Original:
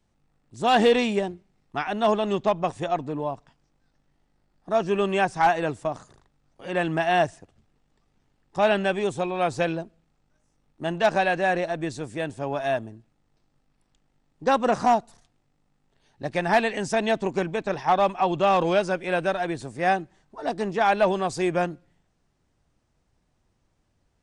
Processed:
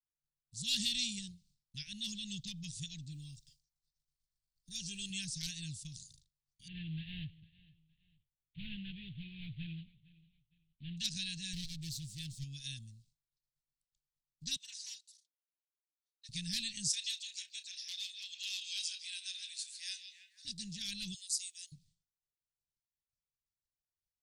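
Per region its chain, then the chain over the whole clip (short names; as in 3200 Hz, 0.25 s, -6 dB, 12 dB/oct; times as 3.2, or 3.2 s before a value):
3.12–5.1 high shelf 7100 Hz +8 dB + comb 2.5 ms, depth 38%
6.68–10.97 CVSD 16 kbps + feedback echo 0.457 s, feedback 34%, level -21.5 dB
11.53–12.44 minimum comb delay 6.2 ms + high shelf 7600 Hz -7.5 dB
14.56–16.29 HPF 950 Hz 24 dB/oct + high shelf 2500 Hz -9.5 dB + comb 3.9 ms, depth 71%
16.88–20.45 HPF 990 Hz 24 dB/oct + doubler 33 ms -12.5 dB + delay with a stepping band-pass 0.159 s, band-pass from 3400 Hz, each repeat -0.7 oct, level -7.5 dB
21.14–21.72 differentiator + frequency shift +170 Hz
whole clip: expander -53 dBFS; elliptic band-stop 160–4200 Hz, stop band 60 dB; resonant low shelf 690 Hz -12 dB, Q 1.5; gain +5 dB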